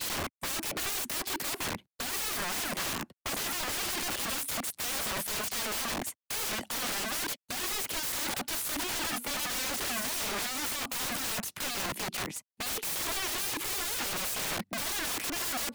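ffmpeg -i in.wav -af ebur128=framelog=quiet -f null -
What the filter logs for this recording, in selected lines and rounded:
Integrated loudness:
  I:         -31.7 LUFS
  Threshold: -41.7 LUFS
Loudness range:
  LRA:         1.1 LU
  Threshold: -51.7 LUFS
  LRA low:   -32.1 LUFS
  LRA high:  -31.1 LUFS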